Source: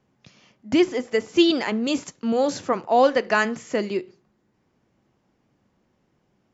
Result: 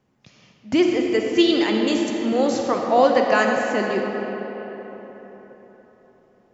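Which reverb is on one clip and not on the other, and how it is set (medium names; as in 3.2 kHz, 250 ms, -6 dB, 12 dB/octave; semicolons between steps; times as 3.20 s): algorithmic reverb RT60 4.3 s, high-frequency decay 0.55×, pre-delay 10 ms, DRR 1 dB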